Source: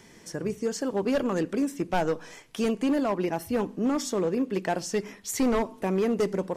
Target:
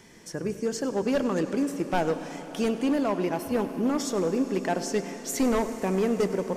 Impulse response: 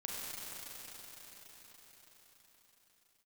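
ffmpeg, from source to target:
-filter_complex "[0:a]asplit=2[a][b];[1:a]atrim=start_sample=2205,adelay=100[c];[b][c]afir=irnorm=-1:irlink=0,volume=-11dB[d];[a][d]amix=inputs=2:normalize=0"

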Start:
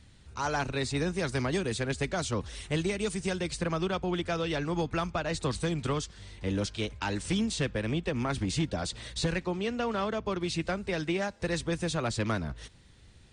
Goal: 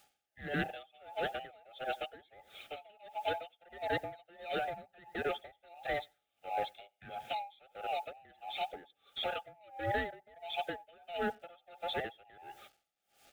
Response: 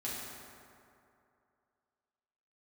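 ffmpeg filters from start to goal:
-filter_complex "[0:a]afftfilt=real='real(if(between(b,1,1008),(2*floor((b-1)/48)+1)*48-b,b),0)':imag='imag(if(between(b,1,1008),(2*floor((b-1)/48)+1)*48-b,b),0)*if(between(b,1,1008),-1,1)':win_size=2048:overlap=0.75,highpass=49,afftdn=nr=13:nf=-37,acrossover=split=160|3000[a][b][c];[b]acompressor=threshold=-36dB:ratio=2[d];[a][d][c]amix=inputs=3:normalize=0,adynamicequalizer=threshold=0.00112:dfrequency=280:dqfactor=5.5:tfrequency=280:tqfactor=5.5:attack=5:release=100:ratio=0.375:range=1.5:mode=cutabove:tftype=bell,asplit=2[e][f];[f]acompressor=threshold=-51dB:ratio=4,volume=-1dB[g];[e][g]amix=inputs=2:normalize=0,lowshelf=f=190:g=-2.5,aresample=8000,asoftclip=type=tanh:threshold=-32dB,aresample=44100,acrusher=bits=10:mix=0:aa=0.000001,asuperstop=centerf=1000:order=20:qfactor=3.2,aecho=1:1:93|186|279:0.0708|0.0333|0.0156,aeval=exprs='val(0)*pow(10,-28*(0.5-0.5*cos(2*PI*1.5*n/s))/20)':c=same,volume=5.5dB"

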